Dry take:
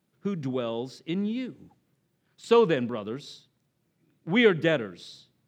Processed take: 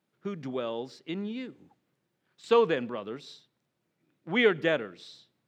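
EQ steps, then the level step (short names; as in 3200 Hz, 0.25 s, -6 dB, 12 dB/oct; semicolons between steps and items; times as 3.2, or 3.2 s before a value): low shelf 230 Hz -12 dB; high shelf 5500 Hz -9 dB; 0.0 dB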